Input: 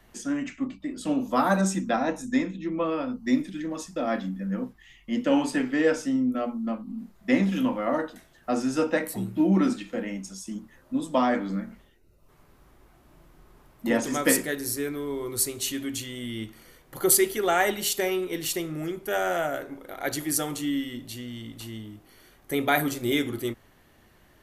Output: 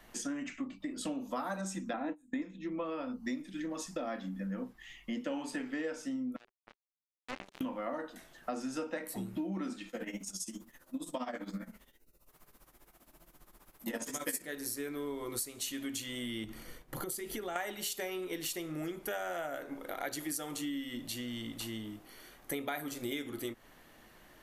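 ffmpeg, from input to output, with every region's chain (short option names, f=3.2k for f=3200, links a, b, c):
-filter_complex "[0:a]asettb=1/sr,asplit=3[a][b][c];[a]atrim=end=1.934[d];[b]atrim=start=1.93:end=2.42,asetpts=PTS-STARTPTS,afade=t=in:d=0.004:c=qsin,afade=t=out:st=0.486:d=0.004:c=qsin,agate=range=-21dB:threshold=-31dB:ratio=16:release=100:detection=peak,asuperstop=centerf=5300:order=4:qfactor=1.4,equalizer=f=300:w=7.9:g=14[e];[c]atrim=start=2.416[f];[d][e]acrossfade=d=0.004:c1=hsin:c2=qsin[g];[g][f]acrossfade=d=0.004:c1=qsin:c2=hsin,asettb=1/sr,asplit=3[h][i][j];[h]atrim=end=6.364[k];[i]atrim=start=6.36:end=7.61,asetpts=PTS-STARTPTS,afade=t=in:d=0.004:c=qsin,afade=t=out:st=1.246:d=0.004:c=qsin,acompressor=threshold=-33dB:ratio=2.5:attack=3.2:release=140:knee=1:detection=peak,acrusher=bits=3:mix=0:aa=0.5[l];[j]atrim=start=7.606[m];[k][l]acrossfade=d=0.004:c1=hsin:c2=qsin[n];[n][m]acrossfade=d=0.004:c1=qsin:c2=hsin,asettb=1/sr,asplit=3[o][p][q];[o]atrim=end=9.894[r];[p]atrim=start=9.89:end=14.42,asetpts=PTS-STARTPTS,afade=t=in:d=0.004:c=qsin,afade=t=out:st=4.526:d=0.004:c=qsin,aemphasis=mode=production:type=50kf,flanger=delay=19.5:depth=6.9:speed=2.3,tremolo=f=15:d=0.8[s];[q]atrim=start=14.416[t];[r][s]acrossfade=d=0.004:c1=hsin:c2=qsin[u];[u][t]acrossfade=d=0.004:c1=qsin:c2=hsin,asettb=1/sr,asplit=3[v][w][x];[v]atrim=end=16.444[y];[w]atrim=start=16.44:end=17.56,asetpts=PTS-STARTPTS,afade=t=in:d=0.004:c=qsin,afade=t=out:st=1.116:d=0.004:c=qsin,agate=range=-33dB:threshold=-52dB:ratio=3:release=100:detection=peak,lowshelf=f=250:g=11,acompressor=threshold=-33dB:ratio=6:attack=3.2:release=140:knee=1:detection=peak[z];[x]atrim=start=17.556[aa];[y][z]acrossfade=d=0.004:c1=hsin:c2=qsin[ab];[ab][aa]acrossfade=d=0.004:c1=qsin:c2=hsin,equalizer=f=79:w=0.72:g=-10.5,bandreject=f=390:w=12,acompressor=threshold=-37dB:ratio=6,volume=1.5dB"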